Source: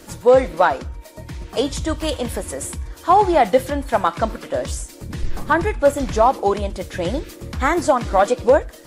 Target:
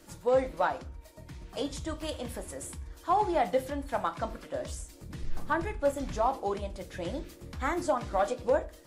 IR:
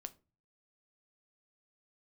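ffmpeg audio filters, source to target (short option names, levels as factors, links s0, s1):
-filter_complex "[0:a]bandreject=f=440:w=14[s0];[1:a]atrim=start_sample=2205[s1];[s0][s1]afir=irnorm=-1:irlink=0,volume=0.398"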